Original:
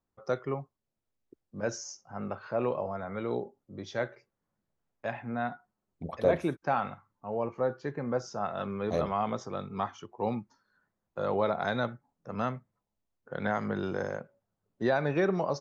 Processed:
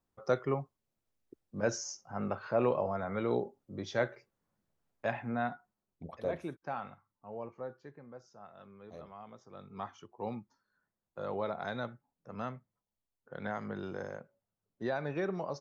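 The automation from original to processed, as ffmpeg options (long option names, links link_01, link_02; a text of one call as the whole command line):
ffmpeg -i in.wav -af "volume=13dB,afade=type=out:start_time=5.08:duration=1.14:silence=0.281838,afade=type=out:start_time=7.38:duration=0.71:silence=0.334965,afade=type=in:start_time=9.42:duration=0.48:silence=0.251189" out.wav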